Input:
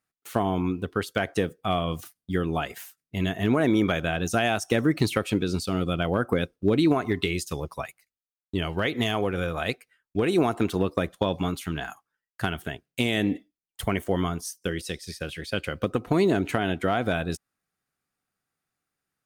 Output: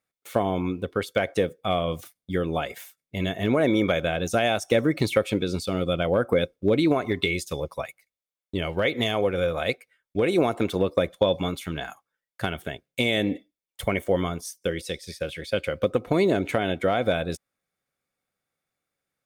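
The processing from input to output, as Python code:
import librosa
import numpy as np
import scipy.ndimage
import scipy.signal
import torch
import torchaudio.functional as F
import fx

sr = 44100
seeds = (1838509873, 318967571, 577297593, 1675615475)

y = fx.small_body(x, sr, hz=(540.0, 2200.0, 3500.0), ring_ms=25, db=10)
y = y * librosa.db_to_amplitude(-1.5)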